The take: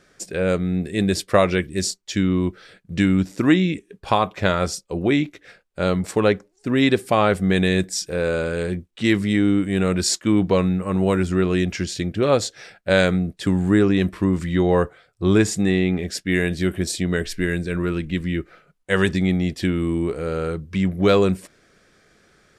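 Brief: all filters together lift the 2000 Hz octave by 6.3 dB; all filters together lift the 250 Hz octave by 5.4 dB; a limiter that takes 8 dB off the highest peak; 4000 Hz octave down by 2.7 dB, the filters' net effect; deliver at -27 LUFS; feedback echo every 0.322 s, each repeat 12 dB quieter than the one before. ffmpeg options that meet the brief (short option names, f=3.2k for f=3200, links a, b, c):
-af "equalizer=f=250:t=o:g=7.5,equalizer=f=2k:t=o:g=9,equalizer=f=4k:t=o:g=-6.5,alimiter=limit=-6.5dB:level=0:latency=1,aecho=1:1:322|644|966:0.251|0.0628|0.0157,volume=-8.5dB"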